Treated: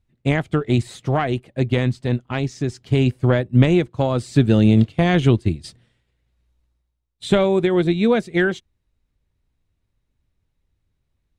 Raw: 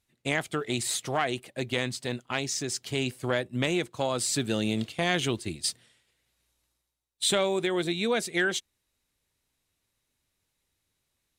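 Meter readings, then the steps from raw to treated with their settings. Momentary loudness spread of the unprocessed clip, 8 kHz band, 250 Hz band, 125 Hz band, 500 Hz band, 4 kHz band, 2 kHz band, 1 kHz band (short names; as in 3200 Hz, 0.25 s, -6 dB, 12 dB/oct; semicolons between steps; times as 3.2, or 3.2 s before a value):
5 LU, -11.0 dB, +13.0 dB, +17.5 dB, +9.0 dB, -1.5 dB, +3.5 dB, +6.0 dB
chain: RIAA curve playback; upward expander 1.5:1, over -36 dBFS; gain +8.5 dB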